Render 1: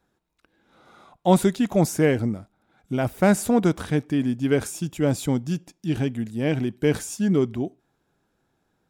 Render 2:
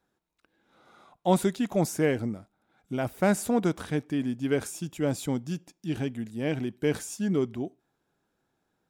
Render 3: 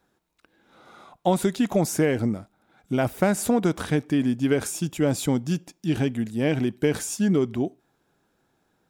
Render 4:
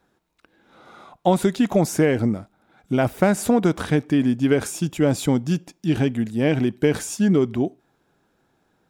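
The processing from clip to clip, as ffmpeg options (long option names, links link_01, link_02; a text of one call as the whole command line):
ffmpeg -i in.wav -af "lowshelf=frequency=130:gain=-6,volume=-4.5dB" out.wav
ffmpeg -i in.wav -af "acompressor=threshold=-24dB:ratio=10,volume=7.5dB" out.wav
ffmpeg -i in.wav -af "highshelf=frequency=5400:gain=-5,volume=3.5dB" out.wav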